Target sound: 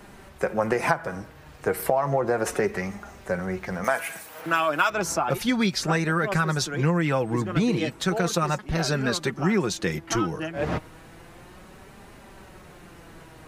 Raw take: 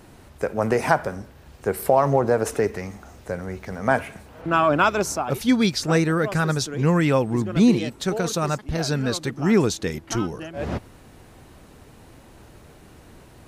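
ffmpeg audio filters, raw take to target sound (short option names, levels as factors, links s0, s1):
-filter_complex "[0:a]acrossover=split=120|2100[s0][s1][s2];[s1]crystalizer=i=8:c=0[s3];[s0][s3][s2]amix=inputs=3:normalize=0,flanger=delay=4.9:depth=1.7:regen=38:speed=0.33:shape=triangular,acompressor=threshold=0.0708:ratio=6,asettb=1/sr,asplit=3[s4][s5][s6];[s4]atrim=end=3.844[s7];[s5]atrim=start=3.84:end=4.9,asetpts=PTS-STARTPTS,afade=t=in:d=0.004:c=qsin,afade=t=out:st=1.056:d=0.004:c=qsin,aemphasis=mode=production:type=riaa[s8];[s6]atrim=start=4.896[s9];[s7][s8]acrossfade=d=0.004:c1=hsin:c2=qsin[s10];[s10][s9]acrossfade=d=0.004:c1=qsin:c2=hsin,volume=1.58"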